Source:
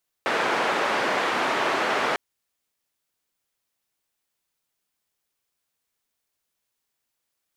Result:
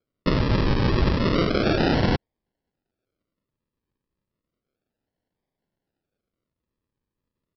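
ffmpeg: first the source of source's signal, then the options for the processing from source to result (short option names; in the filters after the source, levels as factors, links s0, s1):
-f lavfi -i "anoisesrc=c=white:d=1.9:r=44100:seed=1,highpass=f=330,lowpass=f=1500,volume=-6.9dB"
-af "equalizer=f=1400:t=o:w=0.3:g=12,aresample=11025,acrusher=samples=12:mix=1:aa=0.000001:lfo=1:lforange=7.2:lforate=0.32,aresample=44100"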